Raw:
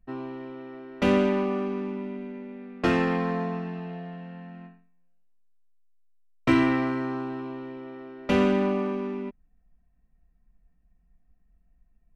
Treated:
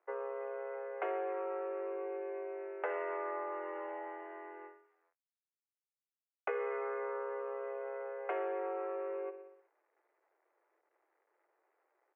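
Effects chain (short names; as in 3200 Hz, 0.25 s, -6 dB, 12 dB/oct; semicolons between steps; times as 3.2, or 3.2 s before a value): on a send: feedback echo 61 ms, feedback 60%, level -14.5 dB; on the sum: requantised 12-bit, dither none; mistuned SSB +150 Hz 270–2000 Hz; compressor 4:1, threshold -37 dBFS, peak gain reduction 15.5 dB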